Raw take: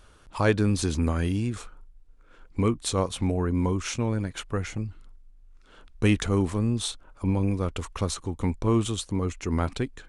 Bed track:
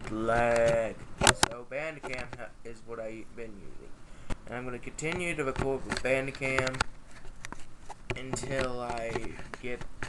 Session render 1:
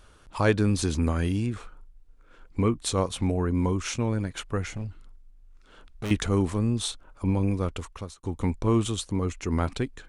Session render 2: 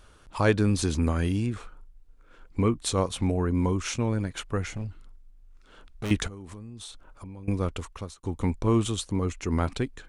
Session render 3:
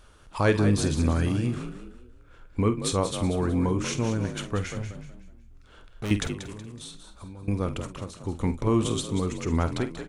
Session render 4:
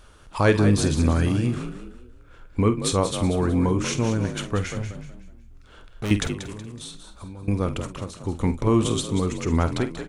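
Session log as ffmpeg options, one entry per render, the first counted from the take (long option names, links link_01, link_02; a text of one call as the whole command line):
ffmpeg -i in.wav -filter_complex "[0:a]asettb=1/sr,asplit=3[link_01][link_02][link_03];[link_01]atrim=end=1.464[link_04];[link_02]atrim=start=1.46:end=2.84,asetpts=PTS-STARTPTS,afade=type=in:duration=0.004:curve=qsin,afade=type=out:start_time=1.376:duration=0.004:curve=qsin,acrossover=split=3200[link_05][link_06];[link_06]acompressor=threshold=-54dB:ratio=4:attack=1:release=60[link_07];[link_05][link_07]amix=inputs=2:normalize=0[link_08];[link_03]atrim=start=2.836[link_09];[link_04][link_08]acrossfade=duration=0.004:curve1=hsin:curve2=qsin[link_10];[link_10][link_09]acrossfade=duration=0.004:curve1=qsin:curve2=hsin,asettb=1/sr,asplit=3[link_11][link_12][link_13];[link_11]atrim=end=4.744[link_14];[link_12]atrim=start=4.74:end=6.11,asetpts=PTS-STARTPTS,afade=type=in:duration=0.004:curve=qsin,afade=type=out:start_time=1.366:duration=0.004:curve=qsin,volume=29dB,asoftclip=hard,volume=-29dB[link_15];[link_13]atrim=start=6.106[link_16];[link_14][link_15]acrossfade=duration=0.004:curve1=hsin:curve2=qsin[link_17];[link_17][link_16]acrossfade=duration=0.004:curve1=qsin:curve2=hsin,asplit=2[link_18][link_19];[link_18]atrim=end=8.23,asetpts=PTS-STARTPTS,afade=type=out:start_time=7.65:duration=0.58[link_20];[link_19]atrim=start=8.23,asetpts=PTS-STARTPTS,afade=type=in:duration=0.004:curve=hsin[link_21];[link_20][link_21]concat=n=2:v=0:a=1" out.wav
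ffmpeg -i in.wav -filter_complex "[0:a]asettb=1/sr,asplit=3[link_01][link_02][link_03];[link_01]atrim=end=6.274[link_04];[link_02]atrim=start=6.27:end=7.48,asetpts=PTS-STARTPTS,afade=type=in:duration=0.004:curve=qsin,afade=type=out:start_time=1.206:duration=0.004:curve=qsin,acompressor=threshold=-37dB:ratio=20:attack=3.2:release=140:knee=1:detection=peak[link_05];[link_03]atrim=start=7.476[link_06];[link_04][link_05]acrossfade=duration=0.004:curve1=hsin:curve2=qsin[link_07];[link_07][link_06]acrossfade=duration=0.004:curve1=qsin:curve2=hsin" out.wav
ffmpeg -i in.wav -filter_complex "[0:a]asplit=2[link_01][link_02];[link_02]adelay=49,volume=-11.5dB[link_03];[link_01][link_03]amix=inputs=2:normalize=0,asplit=2[link_04][link_05];[link_05]asplit=4[link_06][link_07][link_08][link_09];[link_06]adelay=186,afreqshift=42,volume=-10dB[link_10];[link_07]adelay=372,afreqshift=84,volume=-19.1dB[link_11];[link_08]adelay=558,afreqshift=126,volume=-28.2dB[link_12];[link_09]adelay=744,afreqshift=168,volume=-37.4dB[link_13];[link_10][link_11][link_12][link_13]amix=inputs=4:normalize=0[link_14];[link_04][link_14]amix=inputs=2:normalize=0" out.wav
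ffmpeg -i in.wav -af "volume=3.5dB" out.wav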